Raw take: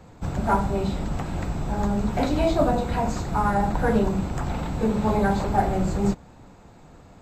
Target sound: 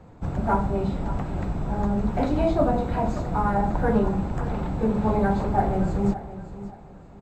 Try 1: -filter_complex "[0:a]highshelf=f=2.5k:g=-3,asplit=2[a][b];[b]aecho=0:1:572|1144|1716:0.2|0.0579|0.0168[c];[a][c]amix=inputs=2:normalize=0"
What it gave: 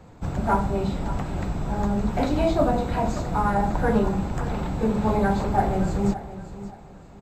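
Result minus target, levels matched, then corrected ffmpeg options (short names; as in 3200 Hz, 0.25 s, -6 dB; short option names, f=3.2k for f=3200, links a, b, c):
4000 Hz band +5.5 dB
-filter_complex "[0:a]highshelf=f=2.5k:g=-12,asplit=2[a][b];[b]aecho=0:1:572|1144|1716:0.2|0.0579|0.0168[c];[a][c]amix=inputs=2:normalize=0"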